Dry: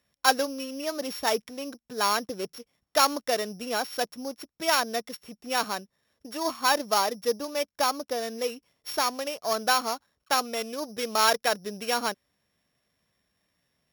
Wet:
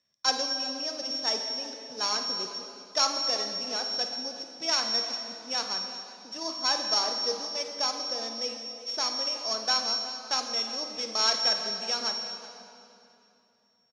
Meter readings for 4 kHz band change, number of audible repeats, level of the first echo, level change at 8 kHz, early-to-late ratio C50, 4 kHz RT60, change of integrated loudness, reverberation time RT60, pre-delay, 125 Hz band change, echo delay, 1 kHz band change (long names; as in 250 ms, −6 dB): +5.0 dB, 2, −12.5 dB, −0.5 dB, 4.5 dB, 2.4 s, −0.5 dB, 2.8 s, 3 ms, can't be measured, 53 ms, −7.0 dB